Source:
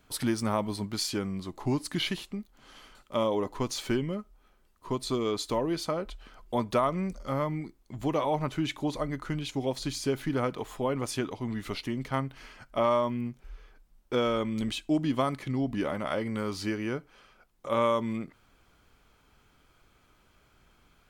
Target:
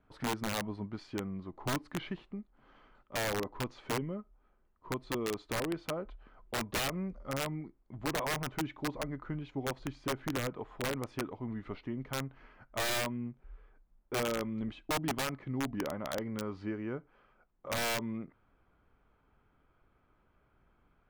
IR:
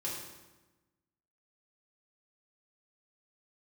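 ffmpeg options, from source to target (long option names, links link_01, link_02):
-af "lowpass=1600,aeval=exprs='(mod(11.9*val(0)+1,2)-1)/11.9':channel_layout=same,volume=-5.5dB"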